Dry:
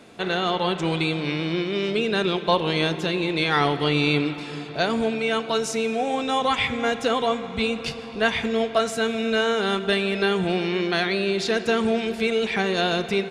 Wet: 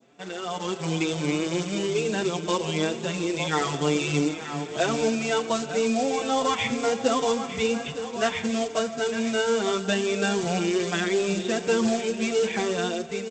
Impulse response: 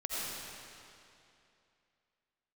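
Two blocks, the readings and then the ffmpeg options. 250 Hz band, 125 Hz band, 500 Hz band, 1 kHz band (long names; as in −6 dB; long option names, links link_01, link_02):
−1.5 dB, −2.5 dB, −1.5 dB, −3.5 dB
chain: -filter_complex "[0:a]highpass=110,aemphasis=mode=reproduction:type=75kf,aresample=8000,aresample=44100,dynaudnorm=framelen=170:gausssize=9:maxgain=14.5dB,aresample=16000,acrusher=bits=4:mode=log:mix=0:aa=0.000001,aresample=44100,crystalizer=i=2:c=0,adynamicequalizer=threshold=0.0355:dfrequency=1800:dqfactor=0.9:tfrequency=1800:tqfactor=0.9:attack=5:release=100:ratio=0.375:range=2:mode=cutabove:tftype=bell,asplit=2[link_01][link_02];[link_02]aecho=0:1:907:0.266[link_03];[link_01][link_03]amix=inputs=2:normalize=0,asplit=2[link_04][link_05];[link_05]adelay=5.7,afreqshift=2.7[link_06];[link_04][link_06]amix=inputs=2:normalize=1,volume=-7.5dB"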